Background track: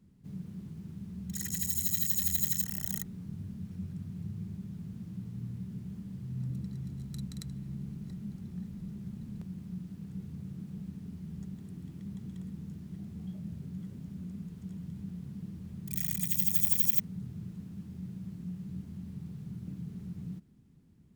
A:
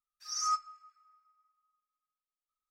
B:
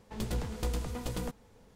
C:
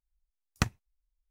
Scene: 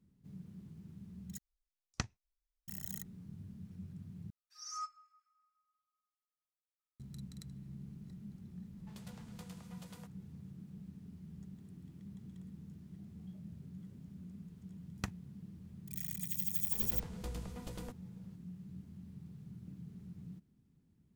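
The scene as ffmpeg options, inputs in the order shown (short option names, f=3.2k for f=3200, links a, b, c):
-filter_complex "[3:a]asplit=2[a][b];[2:a]asplit=2[c][d];[0:a]volume=-8.5dB[e];[a]lowpass=f=5.9k:t=q:w=2.1[f];[c]highpass=690[g];[e]asplit=3[h][i][j];[h]atrim=end=1.384[k];[f]atrim=end=1.3,asetpts=PTS-STARTPTS,volume=-11dB[l];[i]atrim=start=2.676:end=4.304[m];[1:a]atrim=end=2.7,asetpts=PTS-STARTPTS,volume=-11.5dB[n];[j]atrim=start=6.996[o];[g]atrim=end=1.75,asetpts=PTS-STARTPTS,volume=-14dB,afade=t=in:d=0.004:c=hsin,afade=t=out:st=1.746:d=0.004:c=hsin,adelay=8760[p];[b]atrim=end=1.3,asetpts=PTS-STARTPTS,volume=-12.5dB,afade=t=in:d=0.004:c=hsin,afade=t=out:st=1.296:d=0.004:c=hsin,adelay=14420[q];[d]atrim=end=1.75,asetpts=PTS-STARTPTS,volume=-10dB,afade=t=in:d=0.004:c=hsin,afade=t=out:st=1.746:d=0.004:c=hsin,adelay=16610[r];[k][l]acrossfade=d=0.004:c1=hsin:c2=hsin[s];[s][m]acrossfade=d=0.004:c1=hsin:c2=hsin[t];[t][n]acrossfade=d=0.004:c1=hsin:c2=hsin[u];[u][o]acrossfade=d=0.004:c1=hsin:c2=hsin[v];[v][p][q][r]amix=inputs=4:normalize=0"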